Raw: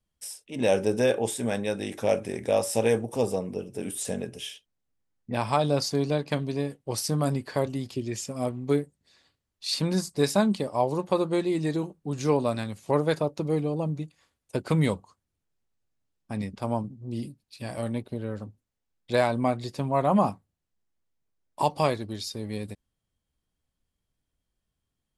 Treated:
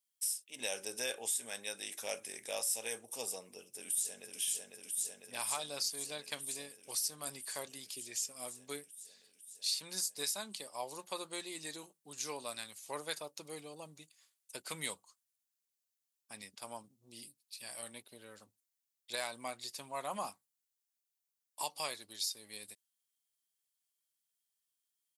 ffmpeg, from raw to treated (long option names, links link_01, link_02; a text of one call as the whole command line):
ffmpeg -i in.wav -filter_complex "[0:a]asplit=2[link_01][link_02];[link_02]afade=type=in:start_time=3.47:duration=0.01,afade=type=out:start_time=4.4:duration=0.01,aecho=0:1:500|1000|1500|2000|2500|3000|3500|4000|4500|5000|5500|6000:0.595662|0.47653|0.381224|0.304979|0.243983|0.195187|0.156149|0.124919|0.0999355|0.0799484|0.0639587|0.051167[link_03];[link_01][link_03]amix=inputs=2:normalize=0,aderivative,alimiter=level_in=3dB:limit=-24dB:level=0:latency=1:release=309,volume=-3dB,volume=3.5dB" out.wav